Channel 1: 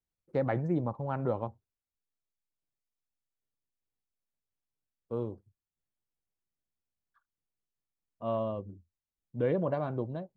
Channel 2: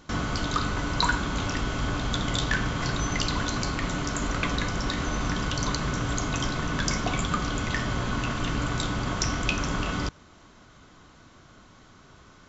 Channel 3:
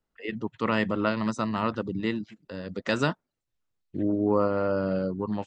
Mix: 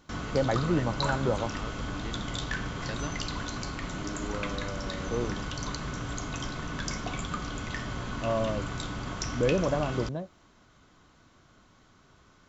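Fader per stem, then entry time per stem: +3.0 dB, -7.0 dB, -14.0 dB; 0.00 s, 0.00 s, 0.00 s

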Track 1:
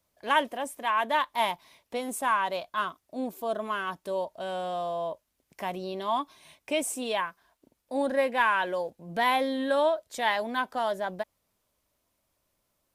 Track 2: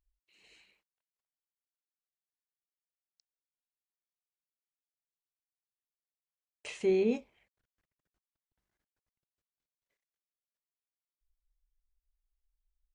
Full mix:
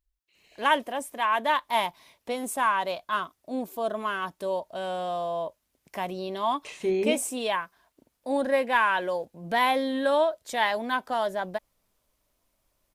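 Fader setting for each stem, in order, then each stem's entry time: +1.5 dB, +1.5 dB; 0.35 s, 0.00 s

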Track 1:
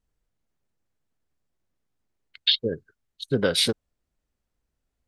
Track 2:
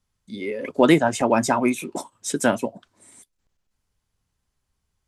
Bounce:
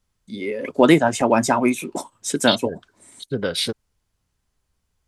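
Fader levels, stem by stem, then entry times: -1.5 dB, +2.0 dB; 0.00 s, 0.00 s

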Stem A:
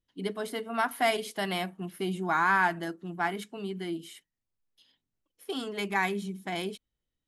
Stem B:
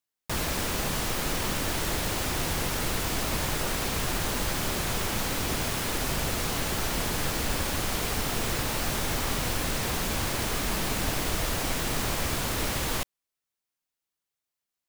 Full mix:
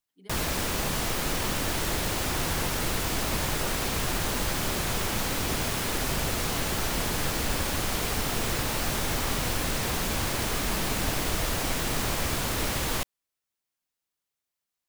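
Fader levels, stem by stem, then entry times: -19.0 dB, +0.5 dB; 0.00 s, 0.00 s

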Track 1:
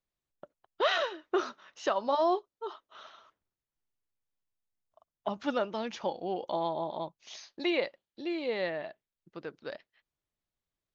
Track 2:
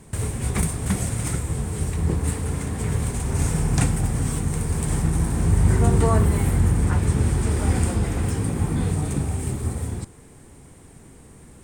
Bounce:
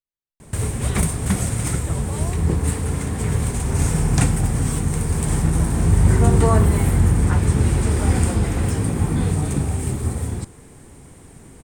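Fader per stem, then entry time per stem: -10.5 dB, +3.0 dB; 0.00 s, 0.40 s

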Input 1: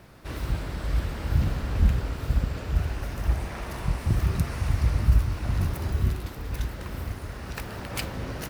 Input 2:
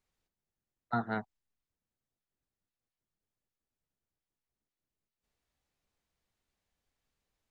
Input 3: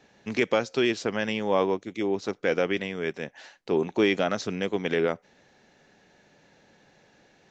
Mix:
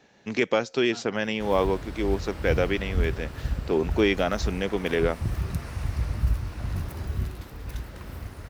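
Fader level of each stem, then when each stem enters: -4.5 dB, -13.5 dB, +0.5 dB; 1.15 s, 0.00 s, 0.00 s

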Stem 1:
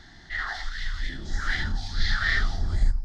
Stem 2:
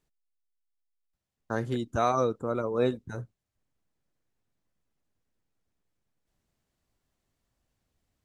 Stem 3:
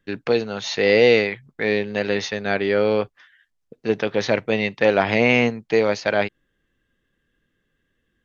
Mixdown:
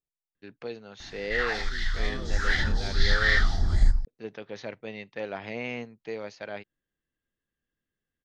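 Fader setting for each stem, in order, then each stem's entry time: +2.0 dB, -18.0 dB, -17.5 dB; 1.00 s, 0.00 s, 0.35 s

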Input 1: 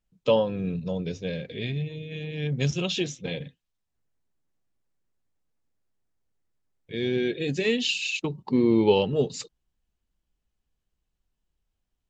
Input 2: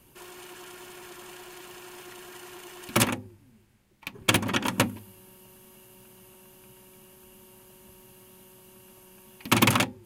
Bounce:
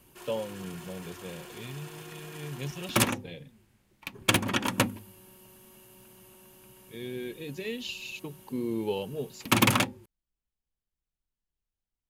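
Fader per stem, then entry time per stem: -11.0 dB, -1.5 dB; 0.00 s, 0.00 s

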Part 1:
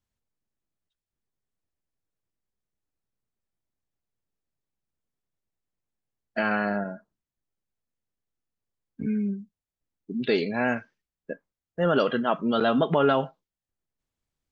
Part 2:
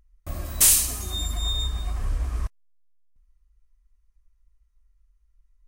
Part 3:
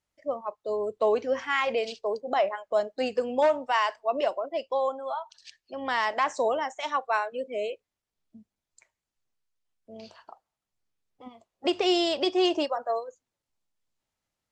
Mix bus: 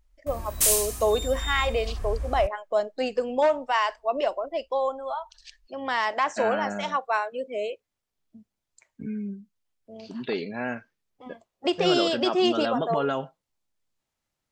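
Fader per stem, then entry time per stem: -5.5 dB, -4.5 dB, +1.0 dB; 0.00 s, 0.00 s, 0.00 s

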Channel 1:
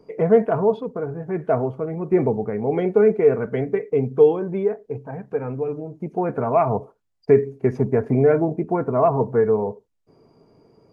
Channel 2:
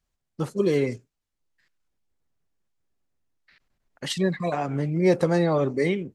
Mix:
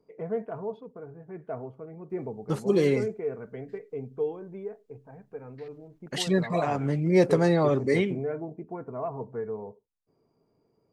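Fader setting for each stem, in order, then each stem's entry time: -15.5 dB, -0.5 dB; 0.00 s, 2.10 s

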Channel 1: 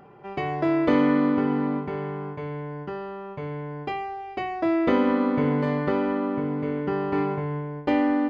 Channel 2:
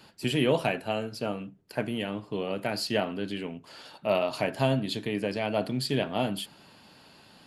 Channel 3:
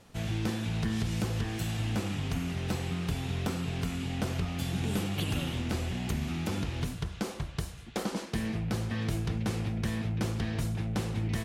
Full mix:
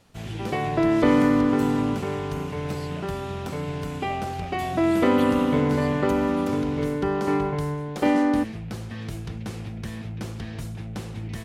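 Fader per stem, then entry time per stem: +1.5 dB, -16.5 dB, -2.0 dB; 0.15 s, 0.00 s, 0.00 s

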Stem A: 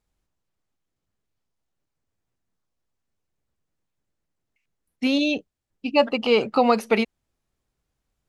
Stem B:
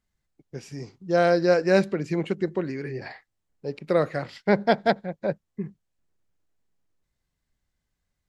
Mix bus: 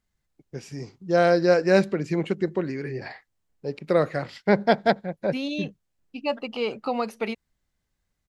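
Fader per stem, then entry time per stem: -8.5 dB, +1.0 dB; 0.30 s, 0.00 s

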